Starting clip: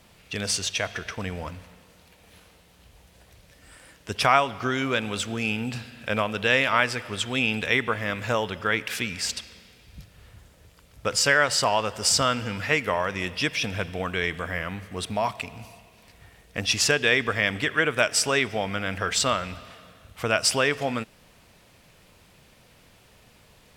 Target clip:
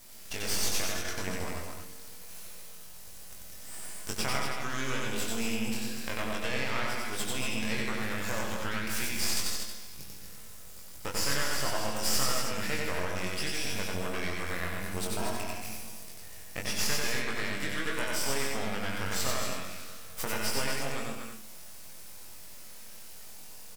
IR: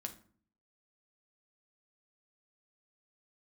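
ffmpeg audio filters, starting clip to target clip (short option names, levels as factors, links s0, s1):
-filter_complex "[0:a]acrossover=split=3500[s0][s1];[s1]acompressor=threshold=0.0158:ratio=4:attack=1:release=60[s2];[s0][s2]amix=inputs=2:normalize=0,lowshelf=f=210:g=-6.5,acompressor=threshold=0.0178:ratio=3,aexciter=amount=4.4:drive=4.8:freq=4700,aeval=exprs='max(val(0),0)':c=same,asplit=2[s3][s4];[s4]adelay=22,volume=0.631[s5];[s3][s5]amix=inputs=2:normalize=0,aecho=1:1:157.4|227.4:0.316|0.398,asplit=2[s6][s7];[1:a]atrim=start_sample=2205,adelay=92[s8];[s7][s8]afir=irnorm=-1:irlink=0,volume=1.19[s9];[s6][s9]amix=inputs=2:normalize=0"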